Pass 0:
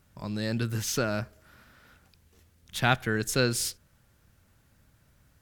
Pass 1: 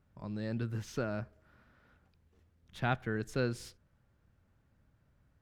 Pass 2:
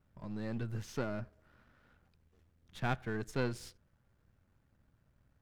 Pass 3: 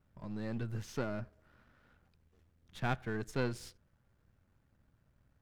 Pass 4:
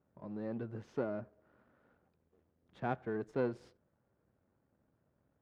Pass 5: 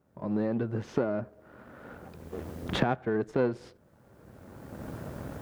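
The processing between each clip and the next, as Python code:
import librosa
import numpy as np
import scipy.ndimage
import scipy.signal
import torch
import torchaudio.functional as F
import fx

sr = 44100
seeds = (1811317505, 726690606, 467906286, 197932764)

y1 = fx.lowpass(x, sr, hz=1300.0, slope=6)
y1 = F.gain(torch.from_numpy(y1), -6.0).numpy()
y2 = np.where(y1 < 0.0, 10.0 ** (-7.0 / 20.0) * y1, y1)
y2 = F.gain(torch.from_numpy(y2), 1.0).numpy()
y3 = y2
y4 = fx.bandpass_q(y3, sr, hz=460.0, q=0.83)
y4 = F.gain(torch.from_numpy(y4), 3.0).numpy()
y5 = fx.recorder_agc(y4, sr, target_db=-27.5, rise_db_per_s=21.0, max_gain_db=30)
y5 = F.gain(torch.from_numpy(y5), 7.0).numpy()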